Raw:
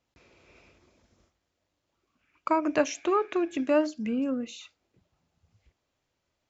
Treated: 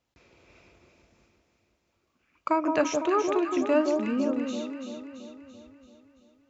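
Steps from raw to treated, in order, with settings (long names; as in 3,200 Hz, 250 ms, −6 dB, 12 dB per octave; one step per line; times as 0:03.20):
delay that swaps between a low-pass and a high-pass 168 ms, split 1,100 Hz, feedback 73%, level −4 dB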